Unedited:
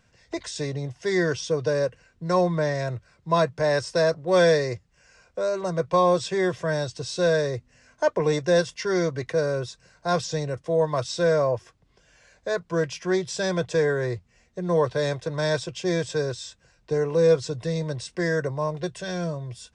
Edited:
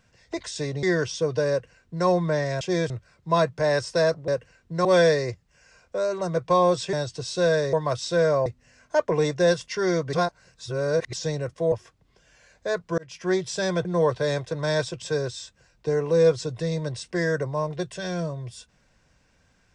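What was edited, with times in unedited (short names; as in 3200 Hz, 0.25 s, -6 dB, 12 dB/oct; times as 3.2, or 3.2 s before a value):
0.83–1.12 cut
1.79–2.36 copy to 4.28
6.36–6.74 cut
9.21–10.21 reverse
10.8–11.53 move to 7.54
12.79–13.1 fade in
13.66–14.6 cut
15.77–16.06 move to 2.9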